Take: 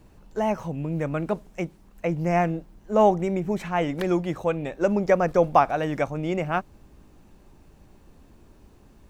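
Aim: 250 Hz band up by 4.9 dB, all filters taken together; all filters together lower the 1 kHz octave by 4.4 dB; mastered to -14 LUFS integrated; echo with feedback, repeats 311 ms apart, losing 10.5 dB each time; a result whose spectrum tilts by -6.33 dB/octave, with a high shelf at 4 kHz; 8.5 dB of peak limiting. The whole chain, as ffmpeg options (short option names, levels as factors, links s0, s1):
-af "equalizer=f=250:t=o:g=8,equalizer=f=1000:t=o:g=-7.5,highshelf=f=4000:g=4.5,alimiter=limit=0.158:level=0:latency=1,aecho=1:1:311|622|933:0.299|0.0896|0.0269,volume=3.98"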